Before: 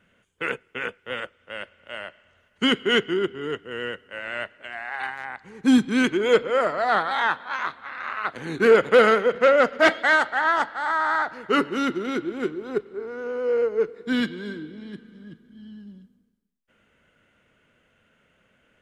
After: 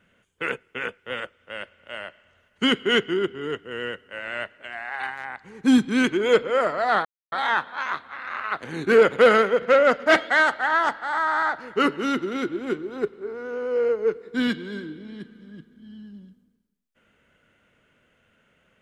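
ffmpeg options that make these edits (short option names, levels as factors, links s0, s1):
-filter_complex "[0:a]asplit=2[s0][s1];[s0]atrim=end=7.05,asetpts=PTS-STARTPTS,afade=t=out:st=7.046:d=0.004:c=hsin,apad=pad_dur=0.27[s2];[s1]atrim=start=7.05,asetpts=PTS-STARTPTS,afade=t=in:d=0.004:c=hsin[s3];[s2][s3]concat=n=2:v=0:a=1"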